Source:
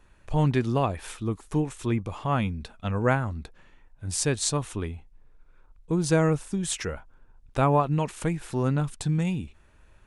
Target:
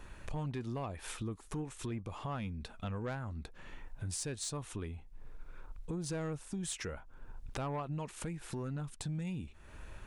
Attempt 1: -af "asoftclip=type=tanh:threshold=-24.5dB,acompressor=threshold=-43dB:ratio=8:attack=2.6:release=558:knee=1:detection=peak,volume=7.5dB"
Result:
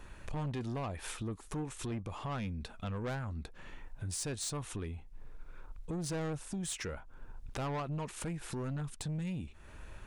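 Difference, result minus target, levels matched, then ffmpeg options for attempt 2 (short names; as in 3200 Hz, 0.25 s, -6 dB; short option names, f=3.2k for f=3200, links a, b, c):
soft clip: distortion +7 dB
-af "asoftclip=type=tanh:threshold=-17.5dB,acompressor=threshold=-43dB:ratio=8:attack=2.6:release=558:knee=1:detection=peak,volume=7.5dB"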